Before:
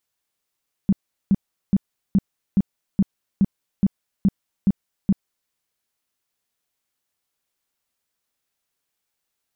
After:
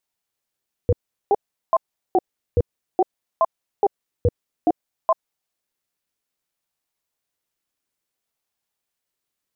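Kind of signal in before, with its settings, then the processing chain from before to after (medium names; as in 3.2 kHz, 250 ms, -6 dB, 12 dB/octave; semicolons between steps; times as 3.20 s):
tone bursts 196 Hz, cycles 7, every 0.42 s, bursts 11, -12 dBFS
bass shelf 180 Hz +5.5 dB; ring modulator with a swept carrier 570 Hz, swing 50%, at 0.58 Hz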